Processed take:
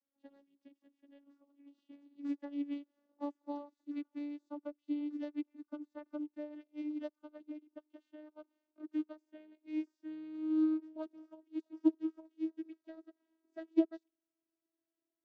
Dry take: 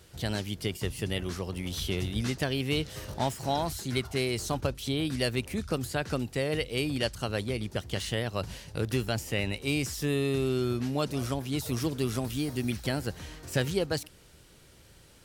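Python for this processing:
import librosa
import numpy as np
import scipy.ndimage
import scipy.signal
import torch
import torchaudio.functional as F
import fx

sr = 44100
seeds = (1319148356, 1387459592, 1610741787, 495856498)

y = fx.vocoder_glide(x, sr, note=61, semitones=3)
y = fx.high_shelf(y, sr, hz=2000.0, db=-11.5)
y = fx.upward_expand(y, sr, threshold_db=-41.0, expansion=2.5)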